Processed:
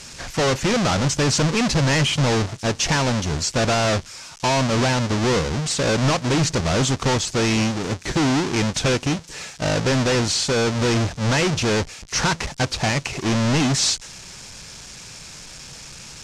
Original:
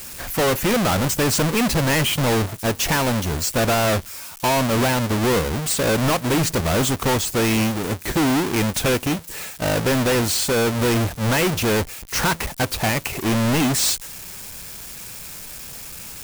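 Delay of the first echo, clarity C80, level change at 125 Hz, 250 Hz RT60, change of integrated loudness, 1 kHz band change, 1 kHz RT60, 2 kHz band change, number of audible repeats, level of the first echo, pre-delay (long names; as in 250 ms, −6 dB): no echo audible, no reverb audible, +1.5 dB, no reverb audible, −0.5 dB, −1.0 dB, no reverb audible, −0.5 dB, no echo audible, no echo audible, no reverb audible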